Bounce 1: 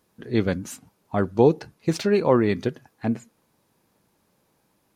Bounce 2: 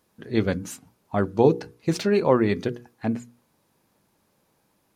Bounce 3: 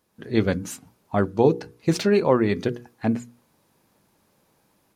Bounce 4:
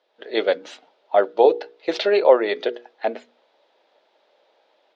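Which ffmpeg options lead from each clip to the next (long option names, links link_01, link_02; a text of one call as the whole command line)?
ffmpeg -i in.wav -af "bandreject=frequency=60:width_type=h:width=6,bandreject=frequency=120:width_type=h:width=6,bandreject=frequency=180:width_type=h:width=6,bandreject=frequency=240:width_type=h:width=6,bandreject=frequency=300:width_type=h:width=6,bandreject=frequency=360:width_type=h:width=6,bandreject=frequency=420:width_type=h:width=6,bandreject=frequency=480:width_type=h:width=6" out.wav
ffmpeg -i in.wav -af "dynaudnorm=framelen=120:gausssize=3:maxgain=6dB,volume=-3dB" out.wav
ffmpeg -i in.wav -af "highpass=frequency=460:width=0.5412,highpass=frequency=460:width=1.3066,equalizer=frequency=610:width_type=q:width=4:gain=5,equalizer=frequency=1100:width_type=q:width=4:gain=-9,equalizer=frequency=1600:width_type=q:width=4:gain=-4,equalizer=frequency=2400:width_type=q:width=4:gain=-4,equalizer=frequency=3500:width_type=q:width=4:gain=4,lowpass=frequency=3900:width=0.5412,lowpass=frequency=3900:width=1.3066,volume=7dB" out.wav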